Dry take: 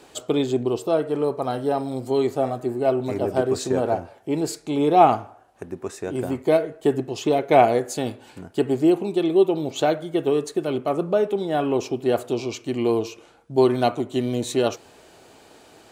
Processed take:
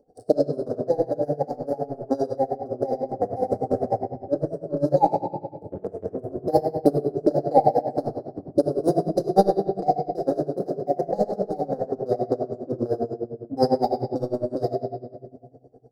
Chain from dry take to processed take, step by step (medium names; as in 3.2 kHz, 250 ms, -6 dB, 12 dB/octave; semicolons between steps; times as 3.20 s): local Wiener filter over 41 samples; elliptic band-stop 630–4200 Hz, stop band 40 dB; formant shift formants +3 st; transient shaper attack +8 dB, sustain -4 dB; simulated room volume 2000 m³, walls mixed, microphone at 2.2 m; logarithmic tremolo 9.9 Hz, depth 20 dB; trim -1 dB